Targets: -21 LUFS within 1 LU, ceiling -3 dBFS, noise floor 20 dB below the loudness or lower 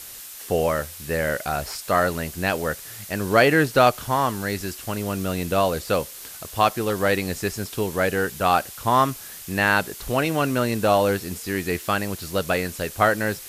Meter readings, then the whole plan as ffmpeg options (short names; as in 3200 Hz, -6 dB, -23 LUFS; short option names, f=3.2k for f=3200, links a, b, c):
noise floor -39 dBFS; noise floor target -43 dBFS; loudness -23.0 LUFS; peak -3.0 dBFS; loudness target -21.0 LUFS
-> -af "afftdn=nr=6:nf=-39"
-af "volume=2dB,alimiter=limit=-3dB:level=0:latency=1"